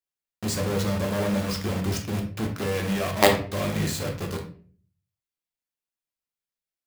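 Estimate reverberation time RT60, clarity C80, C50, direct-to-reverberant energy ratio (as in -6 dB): 0.45 s, 12.5 dB, 7.5 dB, 1.0 dB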